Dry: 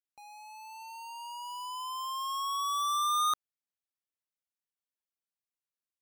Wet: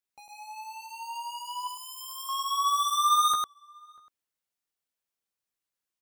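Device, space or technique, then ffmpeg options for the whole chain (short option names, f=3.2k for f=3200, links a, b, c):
slapback doubling: -filter_complex "[0:a]asettb=1/sr,asplit=3[a][b][c];[a]atrim=end=1.674[d];[b]atrim=start=1.67:end=2.29,asetpts=PTS-STARTPTS,afade=t=in:d=0.004:c=qsin,afade=t=out:st=0.616:d=0.004:c=qsin,aderivative[e];[c]atrim=start=2.286[f];[d][e]acrossfade=d=0.004:c1=hsin:c2=qsin[g];[g][f]acrossfade=d=0.004:c1=qsin:c2=hsin,asplit=3[h][i][j];[i]adelay=15,volume=-6dB[k];[j]adelay=103,volume=-4dB[l];[h][k][l]amix=inputs=3:normalize=0,asplit=2[m][n];[n]adelay=641.4,volume=-27dB,highshelf=f=4k:g=-14.4[o];[m][o]amix=inputs=2:normalize=0,volume=3dB"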